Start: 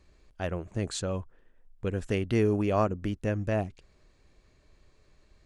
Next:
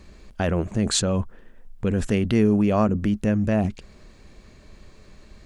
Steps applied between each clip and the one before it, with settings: peaking EQ 210 Hz +9.5 dB 0.32 oct; in parallel at +1 dB: compressor with a negative ratio -34 dBFS, ratio -1; on the sum: trim +2 dB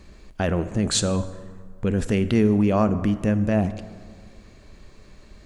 reverberation RT60 1.9 s, pre-delay 7 ms, DRR 12 dB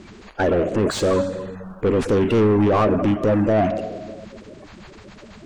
coarse spectral quantiser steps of 30 dB; overdrive pedal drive 25 dB, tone 1.1 kHz, clips at -7.5 dBFS; trim -1 dB

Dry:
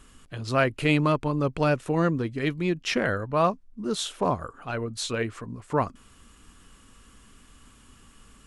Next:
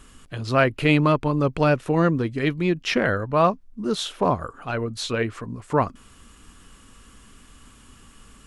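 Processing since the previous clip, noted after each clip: dynamic bell 8.2 kHz, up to -7 dB, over -52 dBFS, Q 1.1; trim +4 dB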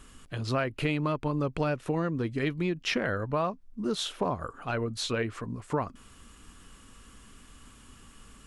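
compression 6:1, threshold -22 dBFS, peak gain reduction 9.5 dB; trim -3 dB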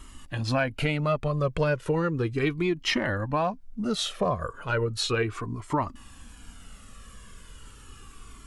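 Shepard-style flanger falling 0.35 Hz; trim +8 dB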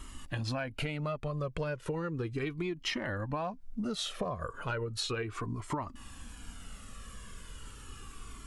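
compression, threshold -32 dBFS, peak gain reduction 11 dB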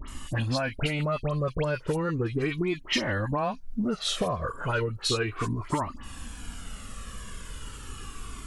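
phase dispersion highs, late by 82 ms, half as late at 2.1 kHz; trim +7 dB

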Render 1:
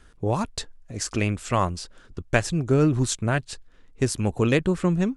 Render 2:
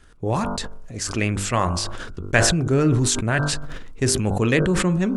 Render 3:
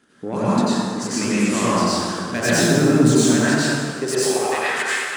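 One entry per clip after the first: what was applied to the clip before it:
de-hum 49.21 Hz, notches 32; dynamic bell 1.8 kHz, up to +5 dB, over -40 dBFS, Q 2.2; decay stretcher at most 28 dB/s; trim +1 dB
saturation -15.5 dBFS, distortion -14 dB; high-pass sweep 230 Hz -> 3.4 kHz, 3.75–5.11 s; plate-style reverb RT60 2.2 s, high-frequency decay 0.65×, pre-delay 80 ms, DRR -9.5 dB; trim -5 dB

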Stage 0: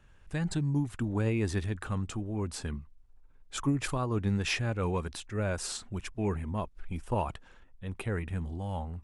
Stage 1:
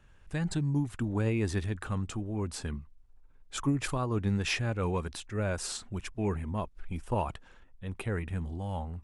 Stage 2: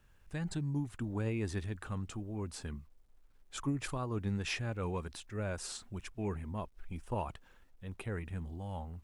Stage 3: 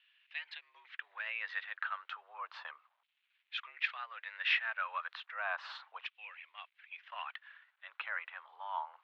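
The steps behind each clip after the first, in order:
no audible change
word length cut 12-bit, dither none; trim -6 dB
mistuned SSB +91 Hz 530–3600 Hz; LFO high-pass saw down 0.33 Hz 930–2800 Hz; trim +4.5 dB

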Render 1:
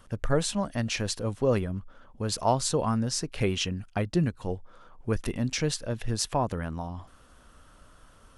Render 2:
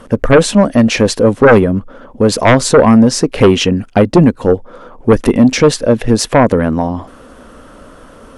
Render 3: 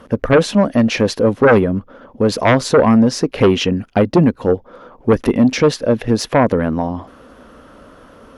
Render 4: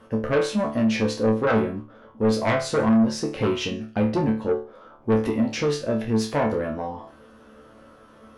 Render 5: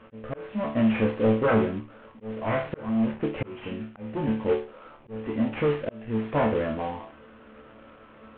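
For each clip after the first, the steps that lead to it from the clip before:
ten-band graphic EQ 250 Hz +11 dB, 500 Hz +11 dB, 1 kHz +3 dB, 2 kHz +4 dB; sine folder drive 9 dB, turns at -0.5 dBFS; trim -1 dB
high-pass 49 Hz 6 dB/octave; peaking EQ 8.3 kHz -10 dB 0.58 oct; trim -4 dB
chord resonator D2 fifth, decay 0.36 s; saturation -17.5 dBFS, distortion -13 dB; trim +3.5 dB
CVSD coder 16 kbps; slow attack 462 ms

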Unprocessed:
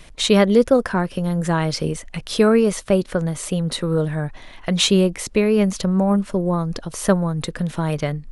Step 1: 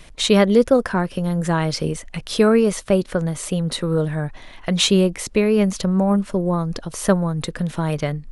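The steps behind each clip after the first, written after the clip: no audible change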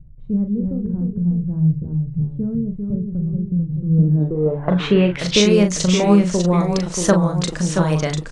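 ever faster or slower copies 254 ms, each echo -1 st, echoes 2, each echo -6 dB; low-pass sweep 130 Hz -> 6.7 kHz, 3.83–5.46 s; doubling 39 ms -7 dB; trim +1 dB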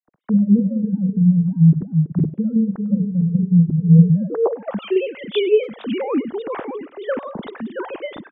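formants replaced by sine waves; speakerphone echo 100 ms, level -21 dB

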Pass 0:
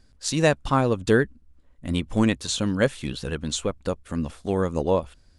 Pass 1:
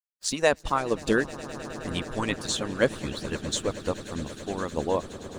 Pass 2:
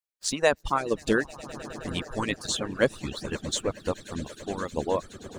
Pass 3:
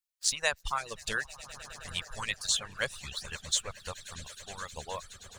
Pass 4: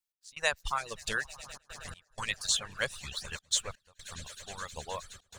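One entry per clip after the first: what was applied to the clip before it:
echo with a slow build-up 105 ms, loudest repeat 8, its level -18 dB; crossover distortion -47.5 dBFS; harmonic-percussive split harmonic -17 dB
reverb removal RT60 0.7 s
amplifier tone stack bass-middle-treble 10-0-10; trim +2.5 dB
trance gate "x..xxxxxxxxxx.x" 124 bpm -24 dB

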